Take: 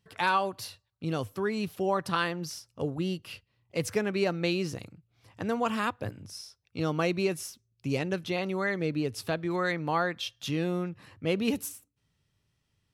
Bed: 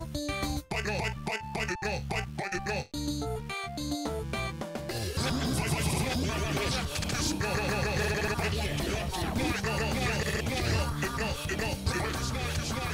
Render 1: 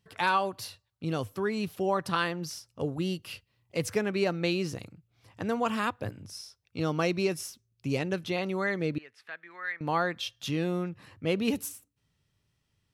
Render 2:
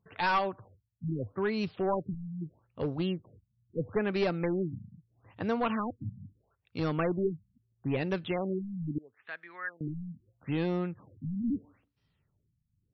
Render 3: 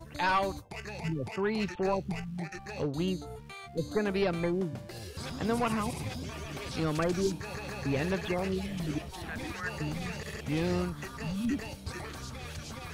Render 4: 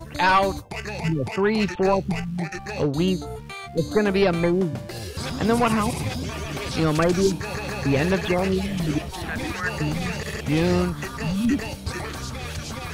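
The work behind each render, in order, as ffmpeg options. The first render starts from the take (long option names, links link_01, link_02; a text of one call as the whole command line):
ffmpeg -i in.wav -filter_complex "[0:a]asettb=1/sr,asplit=3[link_01][link_02][link_03];[link_01]atrim=end=2.904[link_04];[link_02]atrim=start=2.9:end=3.77,asetpts=PTS-STARTPTS,afade=type=in:duration=0.004:curve=qsin,afade=type=out:start_time=0.866:duration=0.004:curve=qsin,highshelf=frequency=4300:gain=4.5[link_05];[link_03]atrim=start=3.766[link_06];[link_04][link_05]acrossfade=duration=0.004:curve1=hsin:curve2=qsin[link_07];[link_07][link_06]acrossfade=duration=0.004:curve1=qsin:curve2=hsin,asettb=1/sr,asplit=3[link_08][link_09][link_10];[link_08]atrim=end=6.904[link_11];[link_09]atrim=start=6.9:end=7.41,asetpts=PTS-STARTPTS,afade=type=in:duration=0.004:curve=qsin,afade=type=out:start_time=0.506:duration=0.004:curve=qsin,equalizer=frequency=5300:width=7.5:gain=11[link_12];[link_10]atrim=start=7.406[link_13];[link_11][link_12]acrossfade=duration=0.004:curve1=hsin:curve2=qsin[link_14];[link_14][link_13]acrossfade=duration=0.004:curve1=qsin:curve2=hsin,asettb=1/sr,asplit=3[link_15][link_16][link_17];[link_15]atrim=end=8.984[link_18];[link_16]atrim=start=8.98:end=9.81,asetpts=PTS-STARTPTS,afade=type=in:duration=0.004:curve=qsin,afade=type=out:start_time=0.826:duration=0.004:curve=qsin,bandpass=frequency=1800:width_type=q:width=3.5[link_19];[link_17]atrim=start=9.806[link_20];[link_18][link_19]acrossfade=duration=0.004:curve1=hsin:curve2=qsin[link_21];[link_21][link_20]acrossfade=duration=0.004:curve1=qsin:curve2=hsin" out.wav
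ffmpeg -i in.wav -af "aeval=exprs='clip(val(0),-1,0.0596)':channel_layout=same,afftfilt=real='re*lt(b*sr/1024,230*pow(5900/230,0.5+0.5*sin(2*PI*0.77*pts/sr)))':imag='im*lt(b*sr/1024,230*pow(5900/230,0.5+0.5*sin(2*PI*0.77*pts/sr)))':win_size=1024:overlap=0.75" out.wav
ffmpeg -i in.wav -i bed.wav -filter_complex "[1:a]volume=-9.5dB[link_01];[0:a][link_01]amix=inputs=2:normalize=0" out.wav
ffmpeg -i in.wav -af "volume=9.5dB" out.wav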